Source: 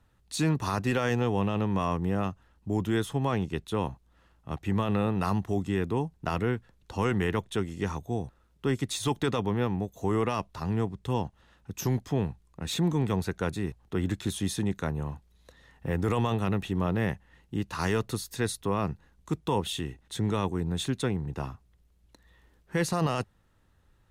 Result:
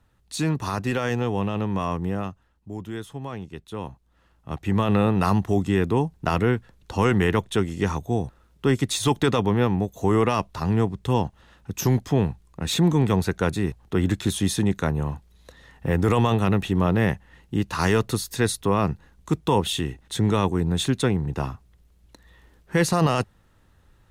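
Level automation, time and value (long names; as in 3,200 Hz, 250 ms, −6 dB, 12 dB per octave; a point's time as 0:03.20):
0:02.07 +2 dB
0:02.69 −6 dB
0:03.53 −6 dB
0:04.93 +7 dB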